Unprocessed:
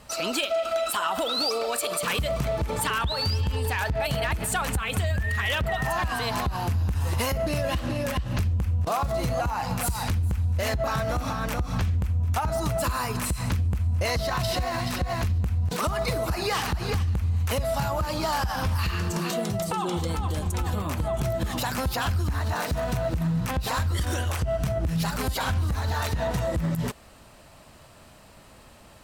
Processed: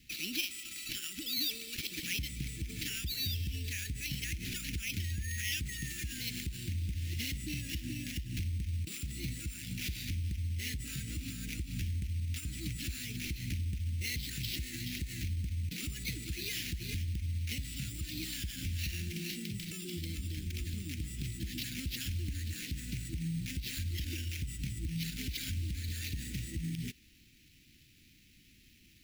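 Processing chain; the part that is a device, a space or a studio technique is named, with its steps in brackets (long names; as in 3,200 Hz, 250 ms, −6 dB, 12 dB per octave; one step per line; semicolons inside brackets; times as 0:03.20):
early companding sampler (sample-rate reduction 8,400 Hz, jitter 0%; log-companded quantiser 6 bits)
elliptic band-stop filter 310–2,200 Hz, stop band 70 dB
low-shelf EQ 430 Hz −5 dB
level −5.5 dB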